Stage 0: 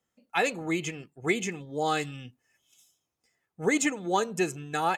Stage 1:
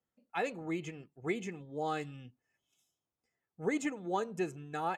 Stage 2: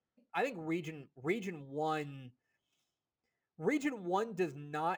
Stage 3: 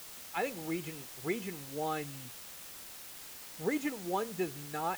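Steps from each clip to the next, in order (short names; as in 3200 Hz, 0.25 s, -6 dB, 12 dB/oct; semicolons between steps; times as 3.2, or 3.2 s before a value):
high shelf 2400 Hz -10.5 dB; gain -6.5 dB
median filter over 5 samples
requantised 8-bit, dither triangular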